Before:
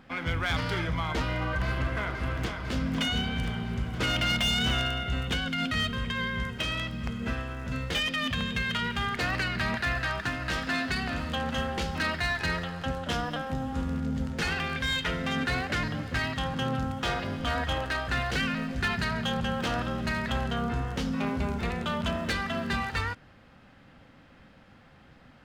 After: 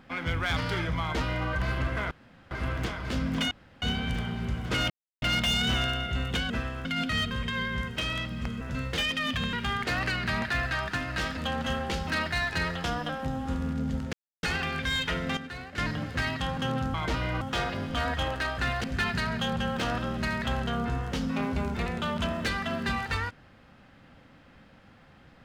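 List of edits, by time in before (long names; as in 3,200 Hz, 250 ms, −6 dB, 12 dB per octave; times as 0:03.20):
0:01.01–0:01.48: duplicate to 0:16.91
0:02.11: splice in room tone 0.40 s
0:03.11: splice in room tone 0.31 s
0:04.19: splice in silence 0.32 s
0:07.23–0:07.58: move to 0:05.47
0:08.50–0:08.85: remove
0:10.69–0:11.25: remove
0:12.72–0:13.11: remove
0:14.40: splice in silence 0.30 s
0:15.34–0:15.75: clip gain −11 dB
0:18.34–0:18.68: remove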